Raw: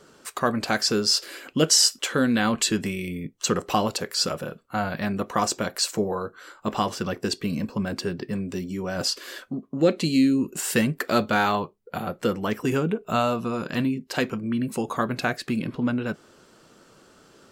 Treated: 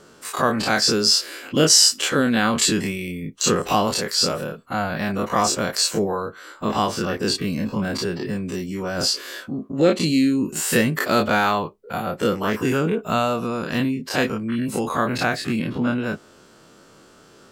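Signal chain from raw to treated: every event in the spectrogram widened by 60 ms

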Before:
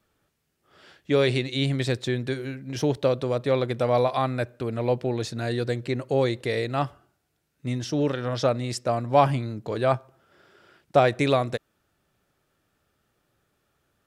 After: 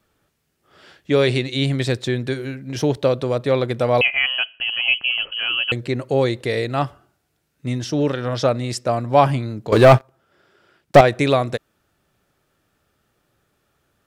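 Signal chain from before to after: 4.01–5.72 s: frequency inversion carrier 3.1 kHz; 9.72–11.01 s: waveshaping leveller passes 3; trim +4.5 dB

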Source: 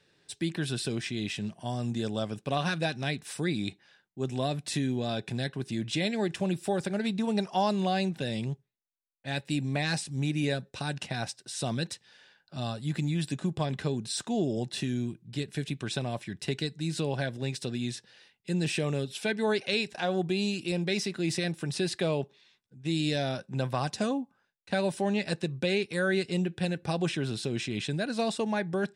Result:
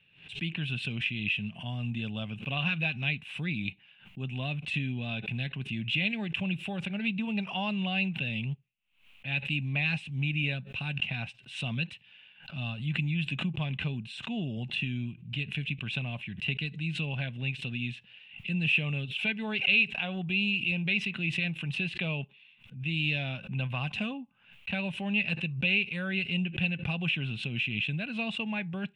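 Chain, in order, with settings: FFT filter 150 Hz 0 dB, 230 Hz -3 dB, 350 Hz -15 dB, 1 kHz -7 dB, 1.8 kHz -7 dB, 2.7 kHz +13 dB, 4.9 kHz -23 dB; swell ahead of each attack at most 110 dB/s

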